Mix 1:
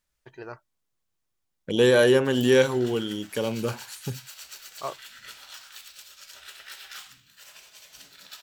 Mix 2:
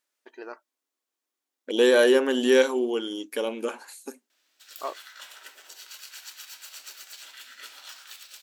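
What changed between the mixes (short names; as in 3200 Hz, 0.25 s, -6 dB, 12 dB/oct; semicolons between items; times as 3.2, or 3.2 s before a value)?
background: entry +2.35 s; master: add brick-wall FIR high-pass 230 Hz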